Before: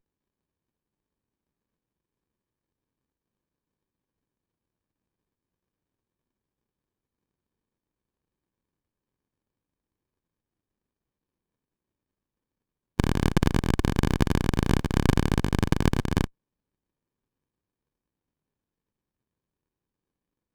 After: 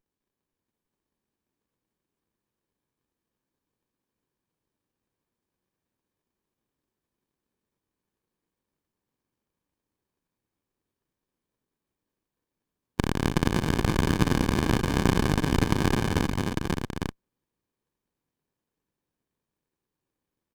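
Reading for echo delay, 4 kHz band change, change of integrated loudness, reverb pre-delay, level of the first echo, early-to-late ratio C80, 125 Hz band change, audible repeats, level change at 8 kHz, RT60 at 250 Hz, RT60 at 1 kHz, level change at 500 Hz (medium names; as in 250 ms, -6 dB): 207 ms, +2.5 dB, -0.5 dB, no reverb, -11.5 dB, no reverb, -1.0 dB, 5, +2.5 dB, no reverb, no reverb, +1.5 dB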